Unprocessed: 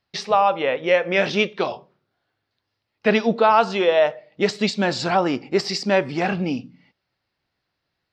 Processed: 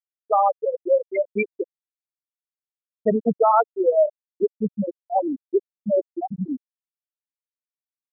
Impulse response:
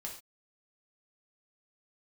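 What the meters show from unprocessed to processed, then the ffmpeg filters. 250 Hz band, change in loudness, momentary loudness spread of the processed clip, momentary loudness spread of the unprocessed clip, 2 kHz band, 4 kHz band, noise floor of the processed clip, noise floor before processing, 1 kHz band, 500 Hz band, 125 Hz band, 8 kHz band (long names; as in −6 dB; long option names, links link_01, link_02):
−3.5 dB, −2.5 dB, 11 LU, 8 LU, −14.5 dB, below −40 dB, below −85 dBFS, −79 dBFS, −2.0 dB, −1.5 dB, −6.0 dB, below −40 dB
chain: -filter_complex "[0:a]asplit=2[link_01][link_02];[link_02]adelay=758,volume=-15dB,highshelf=frequency=4000:gain=-17.1[link_03];[link_01][link_03]amix=inputs=2:normalize=0,afftfilt=real='re*gte(hypot(re,im),0.708)':imag='im*gte(hypot(re,im),0.708)':win_size=1024:overlap=0.75,aexciter=amount=1.9:drive=8.2:freq=4000"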